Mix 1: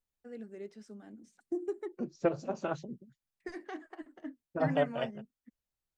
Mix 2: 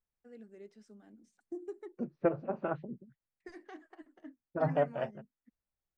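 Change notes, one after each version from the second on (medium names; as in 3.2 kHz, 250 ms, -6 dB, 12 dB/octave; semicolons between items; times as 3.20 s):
first voice -7.0 dB; second voice: add low-pass 2.2 kHz 24 dB/octave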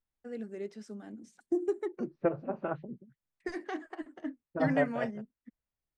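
first voice +12.0 dB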